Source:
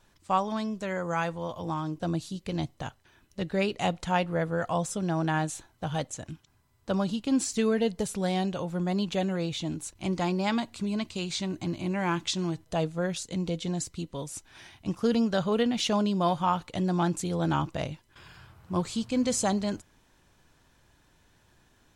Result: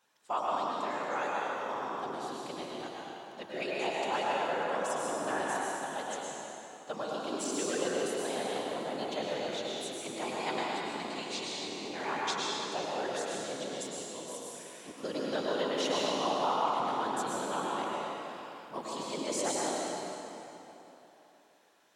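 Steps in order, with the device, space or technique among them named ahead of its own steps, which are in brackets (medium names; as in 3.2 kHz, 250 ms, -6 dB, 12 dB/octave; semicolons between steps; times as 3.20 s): whispering ghost (whisper effect; high-pass 440 Hz 12 dB/octave; reverberation RT60 3.3 s, pre-delay 97 ms, DRR -5 dB); trim -7 dB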